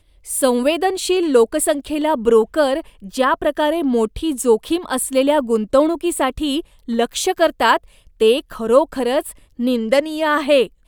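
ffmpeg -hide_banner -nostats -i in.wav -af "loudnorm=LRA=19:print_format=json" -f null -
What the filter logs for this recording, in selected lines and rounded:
"input_i" : "-17.9",
"input_tp" : "-1.6",
"input_lra" : "0.8",
"input_thresh" : "-28.0",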